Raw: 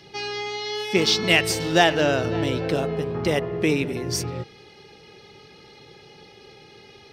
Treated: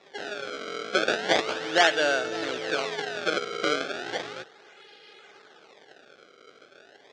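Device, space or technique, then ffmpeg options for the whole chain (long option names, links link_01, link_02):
circuit-bent sampling toy: -af "acrusher=samples=28:mix=1:aa=0.000001:lfo=1:lforange=44.8:lforate=0.35,highpass=490,equalizer=frequency=990:width_type=q:width=4:gain=-8,equalizer=frequency=1500:width_type=q:width=4:gain=6,equalizer=frequency=3500:width_type=q:width=4:gain=5,lowpass=frequency=6000:width=0.5412,lowpass=frequency=6000:width=1.3066,volume=-1.5dB"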